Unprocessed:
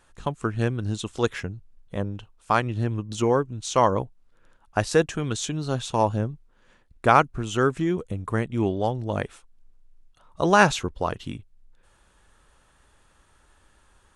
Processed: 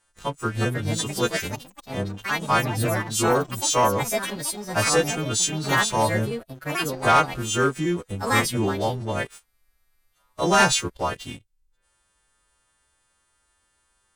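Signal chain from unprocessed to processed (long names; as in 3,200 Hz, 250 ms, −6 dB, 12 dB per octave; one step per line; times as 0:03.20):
every partial snapped to a pitch grid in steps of 2 semitones
delay with pitch and tempo change per echo 423 ms, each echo +5 semitones, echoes 3, each echo −6 dB
leveller curve on the samples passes 2
level −7 dB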